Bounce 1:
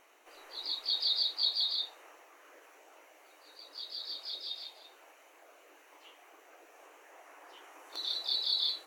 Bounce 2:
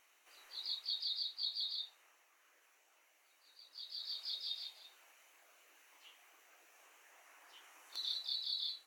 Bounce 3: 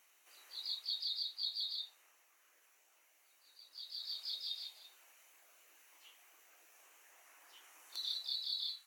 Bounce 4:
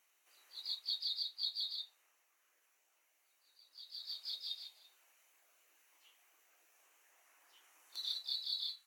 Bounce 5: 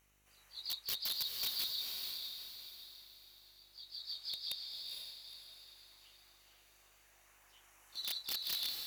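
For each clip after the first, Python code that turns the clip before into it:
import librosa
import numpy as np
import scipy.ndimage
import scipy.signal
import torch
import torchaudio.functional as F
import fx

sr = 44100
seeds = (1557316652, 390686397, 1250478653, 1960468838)

y1 = fx.tone_stack(x, sr, knobs='5-5-5')
y1 = fx.rider(y1, sr, range_db=4, speed_s=0.5)
y1 = y1 * librosa.db_to_amplitude(1.0)
y2 = fx.high_shelf(y1, sr, hz=6000.0, db=8.5)
y2 = fx.filter_sweep_highpass(y2, sr, from_hz=140.0, to_hz=1200.0, start_s=8.08, end_s=8.85, q=1.0)
y2 = y2 * librosa.db_to_amplitude(-2.5)
y3 = fx.upward_expand(y2, sr, threshold_db=-51.0, expansion=1.5)
y3 = y3 * librosa.db_to_amplitude(1.5)
y4 = (np.mod(10.0 ** (32.0 / 20.0) * y3 + 1.0, 2.0) - 1.0) / 10.0 ** (32.0 / 20.0)
y4 = fx.dmg_buzz(y4, sr, base_hz=50.0, harmonics=35, level_db=-77.0, tilt_db=-6, odd_only=False)
y4 = fx.echo_diffused(y4, sr, ms=469, feedback_pct=43, wet_db=-3.0)
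y4 = y4 * librosa.db_to_amplitude(1.0)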